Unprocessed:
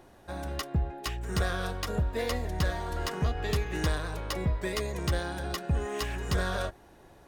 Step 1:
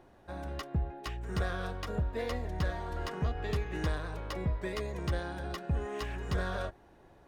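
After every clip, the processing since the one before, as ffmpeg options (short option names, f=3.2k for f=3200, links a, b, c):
-af "highshelf=f=4.6k:g=-11,volume=-3.5dB"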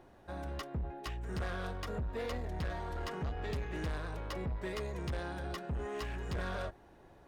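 -af "asoftclip=type=tanh:threshold=-32.5dB"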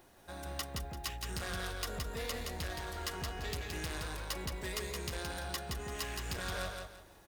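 -af "crystalizer=i=6.5:c=0,acrusher=bits=8:mode=log:mix=0:aa=0.000001,aecho=1:1:170|340|510|680:0.631|0.183|0.0531|0.0154,volume=-5dB"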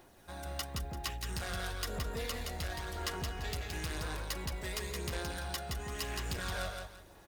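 -af "aphaser=in_gain=1:out_gain=1:delay=1.5:decay=0.26:speed=0.97:type=sinusoidal"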